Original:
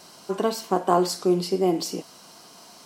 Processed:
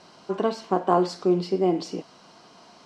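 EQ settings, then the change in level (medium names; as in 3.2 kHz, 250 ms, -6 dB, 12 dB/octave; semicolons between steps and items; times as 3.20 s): distance through air 91 m; treble shelf 7.1 kHz -9.5 dB; 0.0 dB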